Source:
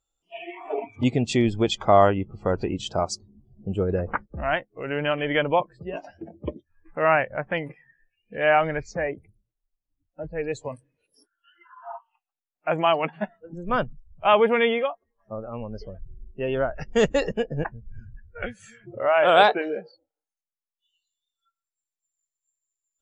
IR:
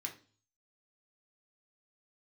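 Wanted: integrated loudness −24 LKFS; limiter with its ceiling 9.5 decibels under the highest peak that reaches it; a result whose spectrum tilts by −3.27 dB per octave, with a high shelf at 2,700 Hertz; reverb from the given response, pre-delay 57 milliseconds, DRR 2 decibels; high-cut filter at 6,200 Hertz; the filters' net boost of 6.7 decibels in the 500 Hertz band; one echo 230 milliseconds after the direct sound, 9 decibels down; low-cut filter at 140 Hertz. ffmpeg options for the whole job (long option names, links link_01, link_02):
-filter_complex "[0:a]highpass=140,lowpass=6200,equalizer=frequency=500:width_type=o:gain=8,highshelf=frequency=2700:gain=6.5,alimiter=limit=-9.5dB:level=0:latency=1,aecho=1:1:230:0.355,asplit=2[link_01][link_02];[1:a]atrim=start_sample=2205,adelay=57[link_03];[link_02][link_03]afir=irnorm=-1:irlink=0,volume=-1dB[link_04];[link_01][link_04]amix=inputs=2:normalize=0,volume=-2.5dB"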